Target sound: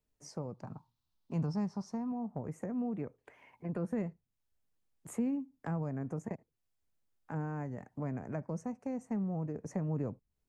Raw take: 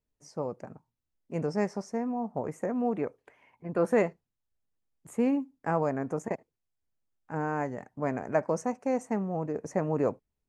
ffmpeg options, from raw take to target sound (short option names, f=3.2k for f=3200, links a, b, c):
-filter_complex "[0:a]asettb=1/sr,asplit=3[a][b][c];[a]atrim=end=0.544[d];[b]atrim=start=0.54:end=2.12,asetpts=PTS-STARTPTS,afade=t=in:d=0.004:c=qsin,afade=t=out:st=1.576:d=0.004:c=qsin,equalizer=f=125:t=o:w=1:g=4,equalizer=f=500:t=o:w=1:g=-7,equalizer=f=1k:t=o:w=1:g=9,equalizer=f=2k:t=o:w=1:g=-8,equalizer=f=4k:t=o:w=1:g=11,equalizer=f=8k:t=o:w=1:g=-5[e];[c]atrim=start=2.116[f];[d][e]acrossfade=d=0.004:c1=hsin:c2=qsin[g];[g][f]acrossfade=d=0.004:c1=qsin:c2=hsin,acrossover=split=210[h][i];[i]acompressor=threshold=-44dB:ratio=5[j];[h][j]amix=inputs=2:normalize=0,volume=1.5dB"